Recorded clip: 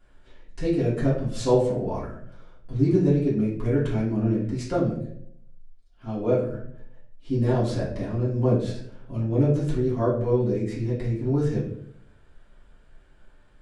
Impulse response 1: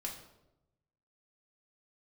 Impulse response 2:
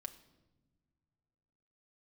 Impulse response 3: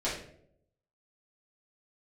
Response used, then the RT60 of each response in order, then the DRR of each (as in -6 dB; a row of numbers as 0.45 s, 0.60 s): 3; 0.90 s, no single decay rate, 0.70 s; -1.5 dB, 4.5 dB, -10.0 dB